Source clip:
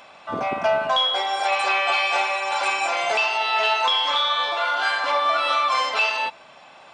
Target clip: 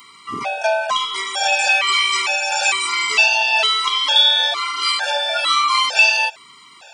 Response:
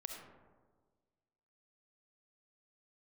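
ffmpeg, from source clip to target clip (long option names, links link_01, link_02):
-af "crystalizer=i=7:c=0,afftfilt=real='re*gt(sin(2*PI*1.1*pts/sr)*(1-2*mod(floor(b*sr/1024/470),2)),0)':imag='im*gt(sin(2*PI*1.1*pts/sr)*(1-2*mod(floor(b*sr/1024/470),2)),0)':win_size=1024:overlap=0.75"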